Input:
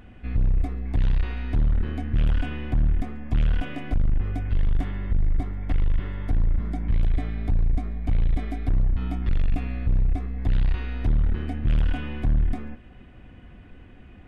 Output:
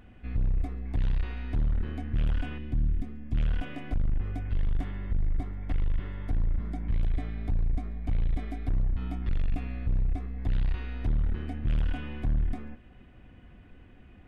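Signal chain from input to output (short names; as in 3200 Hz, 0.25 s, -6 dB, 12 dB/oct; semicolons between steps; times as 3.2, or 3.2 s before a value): 2.58–3.37 EQ curve 290 Hz 0 dB, 790 Hz -11 dB, 3500 Hz -4 dB; gain -5.5 dB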